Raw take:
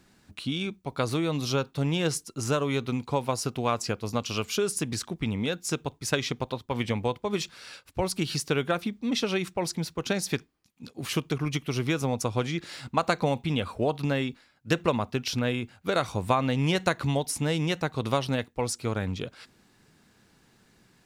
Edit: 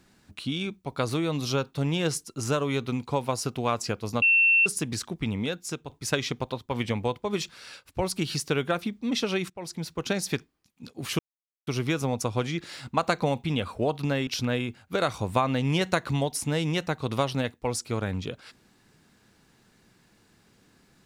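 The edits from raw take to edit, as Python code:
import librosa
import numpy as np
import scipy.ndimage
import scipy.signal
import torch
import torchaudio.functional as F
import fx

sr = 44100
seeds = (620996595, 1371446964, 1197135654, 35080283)

y = fx.edit(x, sr, fx.bleep(start_s=4.22, length_s=0.44, hz=2700.0, db=-16.5),
    fx.fade_out_to(start_s=5.39, length_s=0.5, floor_db=-8.0),
    fx.fade_in_from(start_s=9.5, length_s=0.47, floor_db=-16.0),
    fx.silence(start_s=11.19, length_s=0.48),
    fx.cut(start_s=14.27, length_s=0.94), tone=tone)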